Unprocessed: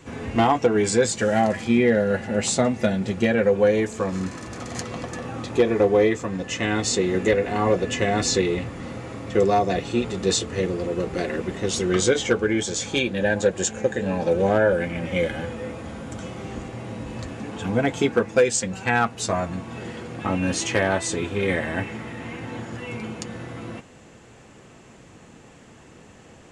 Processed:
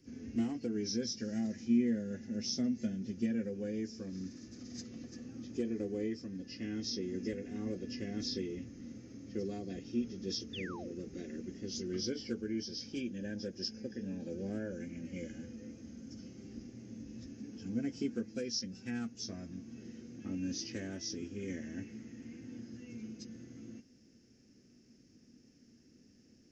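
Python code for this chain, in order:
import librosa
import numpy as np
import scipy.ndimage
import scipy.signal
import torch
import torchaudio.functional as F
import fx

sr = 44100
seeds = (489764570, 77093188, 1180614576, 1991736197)

y = fx.freq_compress(x, sr, knee_hz=2700.0, ratio=1.5)
y = fx.curve_eq(y, sr, hz=(170.0, 240.0, 1000.0, 1600.0, 3800.0, 6900.0), db=(0, 11, -22, -10, -12, 5))
y = fx.spec_paint(y, sr, seeds[0], shape='fall', start_s=10.53, length_s=0.41, low_hz=330.0, high_hz=3700.0, level_db=-32.0)
y = F.preemphasis(torch.from_numpy(y), 0.8).numpy()
y = y * librosa.db_to_amplitude(-4.5)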